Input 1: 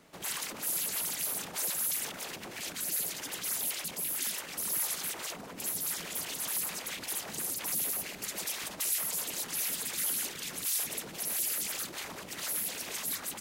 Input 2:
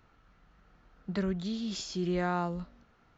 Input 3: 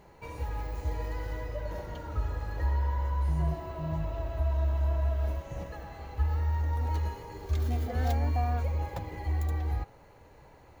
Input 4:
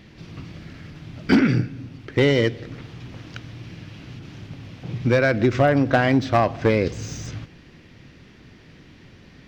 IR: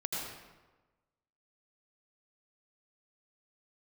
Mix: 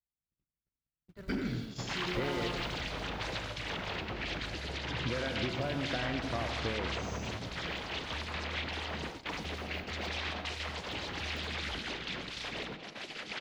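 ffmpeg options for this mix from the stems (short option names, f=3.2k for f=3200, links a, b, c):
-filter_complex "[0:a]lowpass=f=3.9k:w=0.5412,lowpass=f=3.9k:w=1.3066,adelay=1650,volume=2dB,asplit=2[a][b];[b]volume=-9dB[c];[1:a]lowshelf=f=130:t=q:w=3:g=10.5,acrusher=bits=6:mode=log:mix=0:aa=0.000001,volume=0dB,asplit=2[d][e];[e]volume=-14.5dB[f];[2:a]alimiter=level_in=4.5dB:limit=-24dB:level=0:latency=1,volume=-4.5dB,adelay=1950,volume=-3dB,asplit=2[g][h];[h]volume=-18dB[i];[3:a]acompressor=threshold=-20dB:ratio=12,volume=-15dB,asplit=2[j][k];[k]volume=-7.5dB[l];[d][g]amix=inputs=2:normalize=0,aeval=exprs='val(0)+0.00224*(sin(2*PI*60*n/s)+sin(2*PI*2*60*n/s)/2+sin(2*PI*3*60*n/s)/3+sin(2*PI*4*60*n/s)/4+sin(2*PI*5*60*n/s)/5)':c=same,acompressor=threshold=-46dB:ratio=4,volume=0dB[m];[4:a]atrim=start_sample=2205[n];[c][f][i][l]amix=inputs=4:normalize=0[o];[o][n]afir=irnorm=-1:irlink=0[p];[a][j][m][p]amix=inputs=4:normalize=0,agate=range=-53dB:threshold=-39dB:ratio=16:detection=peak"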